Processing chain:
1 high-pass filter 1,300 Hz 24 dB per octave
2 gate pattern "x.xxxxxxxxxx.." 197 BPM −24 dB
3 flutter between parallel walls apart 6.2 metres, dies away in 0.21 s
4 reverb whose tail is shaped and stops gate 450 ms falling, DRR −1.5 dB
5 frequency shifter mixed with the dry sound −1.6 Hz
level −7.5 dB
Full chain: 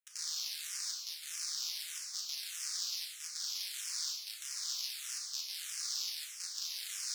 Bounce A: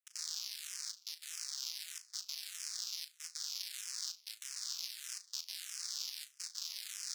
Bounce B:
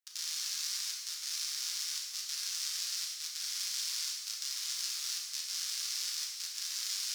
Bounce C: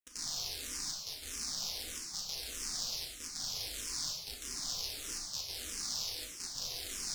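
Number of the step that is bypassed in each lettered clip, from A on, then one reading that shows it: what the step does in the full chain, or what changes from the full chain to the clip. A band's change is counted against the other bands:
4, change in integrated loudness −3.5 LU
5, change in integrated loudness +3.0 LU
1, 1 kHz band +7.0 dB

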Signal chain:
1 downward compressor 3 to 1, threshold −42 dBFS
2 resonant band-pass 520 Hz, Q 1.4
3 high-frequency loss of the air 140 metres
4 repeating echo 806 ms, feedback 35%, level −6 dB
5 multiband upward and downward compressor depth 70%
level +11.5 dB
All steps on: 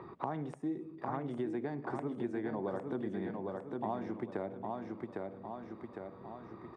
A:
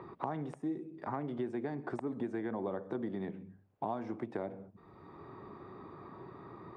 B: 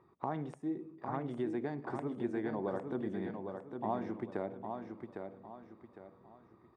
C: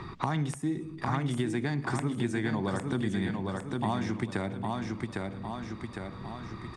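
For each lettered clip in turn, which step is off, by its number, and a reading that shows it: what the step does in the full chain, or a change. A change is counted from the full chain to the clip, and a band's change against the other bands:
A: 4, change in momentary loudness spread +5 LU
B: 5, change in crest factor −1.5 dB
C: 2, 500 Hz band −8.0 dB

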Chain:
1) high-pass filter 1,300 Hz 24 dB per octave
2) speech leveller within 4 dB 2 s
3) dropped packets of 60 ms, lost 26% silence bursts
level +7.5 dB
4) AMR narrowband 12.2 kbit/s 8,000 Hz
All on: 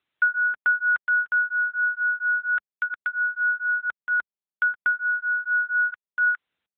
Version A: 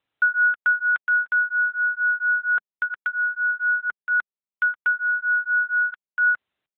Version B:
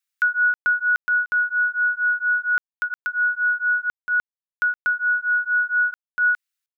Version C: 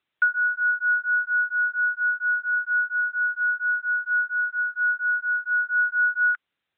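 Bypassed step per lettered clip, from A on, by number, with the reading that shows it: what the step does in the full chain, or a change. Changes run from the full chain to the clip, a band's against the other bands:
1, change in integrated loudness +2.0 LU
4, change in crest factor −3.5 dB
3, change in momentary loudness spread −2 LU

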